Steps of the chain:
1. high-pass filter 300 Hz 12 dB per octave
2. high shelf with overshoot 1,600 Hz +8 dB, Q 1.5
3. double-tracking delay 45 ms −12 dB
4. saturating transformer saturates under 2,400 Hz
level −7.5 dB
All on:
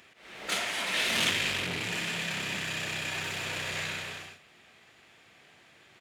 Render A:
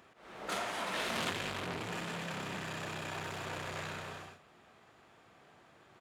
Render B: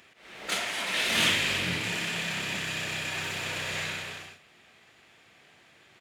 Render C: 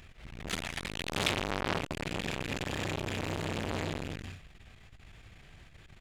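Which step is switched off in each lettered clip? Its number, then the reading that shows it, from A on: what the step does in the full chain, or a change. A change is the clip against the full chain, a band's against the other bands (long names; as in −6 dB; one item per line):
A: 2, change in momentary loudness spread −3 LU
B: 4, change in crest factor −1.5 dB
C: 1, 8 kHz band −9.0 dB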